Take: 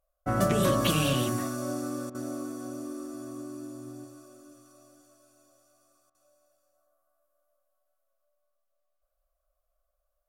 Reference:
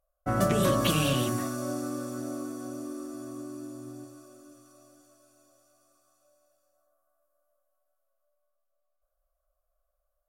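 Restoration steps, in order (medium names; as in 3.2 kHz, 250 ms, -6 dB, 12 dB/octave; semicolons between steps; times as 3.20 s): interpolate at 2.10/6.10 s, 46 ms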